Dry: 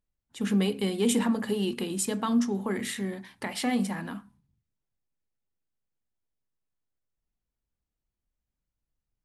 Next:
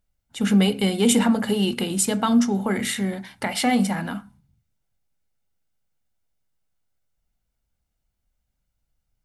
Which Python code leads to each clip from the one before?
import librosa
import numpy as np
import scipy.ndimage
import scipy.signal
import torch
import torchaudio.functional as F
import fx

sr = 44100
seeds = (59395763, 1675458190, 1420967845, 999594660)

y = x + 0.36 * np.pad(x, (int(1.4 * sr / 1000.0), 0))[:len(x)]
y = y * librosa.db_to_amplitude(7.5)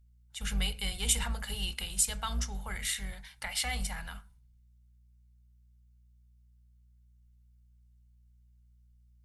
y = fx.octave_divider(x, sr, octaves=2, level_db=-2.0)
y = fx.add_hum(y, sr, base_hz=60, snr_db=25)
y = fx.tone_stack(y, sr, knobs='10-0-10')
y = y * librosa.db_to_amplitude(-4.0)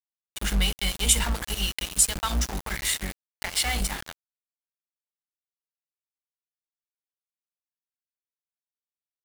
y = np.where(np.abs(x) >= 10.0 ** (-35.0 / 20.0), x, 0.0)
y = y * librosa.db_to_amplitude(7.5)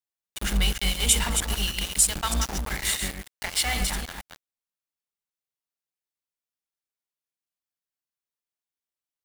y = fx.reverse_delay(x, sr, ms=156, wet_db=-6)